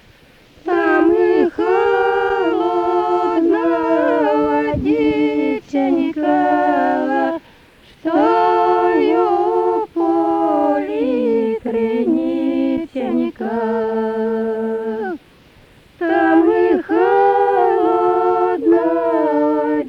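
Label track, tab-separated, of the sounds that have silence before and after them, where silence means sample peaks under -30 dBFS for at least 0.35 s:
0.620000	7.380000	sound
8.050000	15.160000	sound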